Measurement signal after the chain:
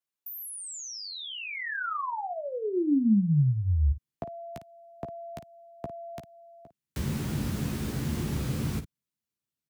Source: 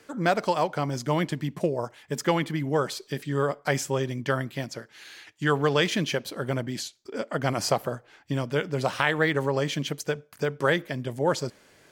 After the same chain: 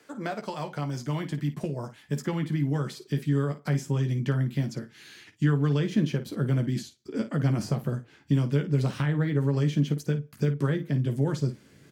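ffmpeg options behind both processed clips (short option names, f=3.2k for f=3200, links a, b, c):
-filter_complex "[0:a]highpass=120,acrossover=split=250|1400[a][b][c];[a]acompressor=threshold=-38dB:ratio=4[d];[b]acompressor=threshold=-29dB:ratio=4[e];[c]acompressor=threshold=-39dB:ratio=4[f];[d][e][f]amix=inputs=3:normalize=0,asubboost=boost=9:cutoff=220,asplit=2[g][h];[h]aecho=0:1:14|54:0.447|0.251[i];[g][i]amix=inputs=2:normalize=0,volume=-3.5dB"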